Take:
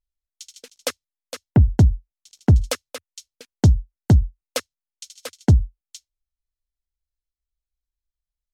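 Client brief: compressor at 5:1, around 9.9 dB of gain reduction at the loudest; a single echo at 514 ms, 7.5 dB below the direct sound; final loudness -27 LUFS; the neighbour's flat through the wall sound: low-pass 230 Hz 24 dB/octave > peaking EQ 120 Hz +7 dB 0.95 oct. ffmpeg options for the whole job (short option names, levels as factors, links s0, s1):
-af "acompressor=threshold=0.1:ratio=5,lowpass=f=230:w=0.5412,lowpass=f=230:w=1.3066,equalizer=f=120:t=o:w=0.95:g=7,aecho=1:1:514:0.422,volume=0.891"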